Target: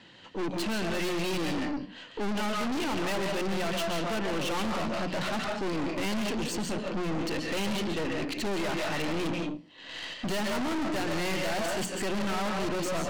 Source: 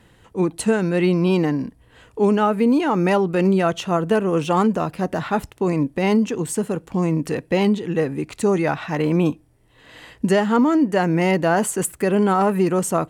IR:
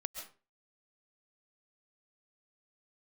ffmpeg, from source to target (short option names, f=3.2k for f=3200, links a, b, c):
-filter_complex "[0:a]highpass=200,equalizer=f=440:t=q:w=4:g=-9,equalizer=f=760:t=q:w=4:g=-3,equalizer=f=1.2k:t=q:w=4:g=-4,equalizer=f=3k:t=q:w=4:g=6,equalizer=f=4.4k:t=q:w=4:g=8,lowpass=f=6.1k:w=0.5412,lowpass=f=6.1k:w=1.3066,bandreject=f=60:t=h:w=6,bandreject=f=120:t=h:w=6,bandreject=f=180:t=h:w=6,bandreject=f=240:t=h:w=6,bandreject=f=300:t=h:w=6[a];[1:a]atrim=start_sample=2205,asetrate=41895,aresample=44100[b];[a][b]afir=irnorm=-1:irlink=0,aeval=exprs='(tanh(63.1*val(0)+0.55)-tanh(0.55))/63.1':c=same,volume=6.5dB"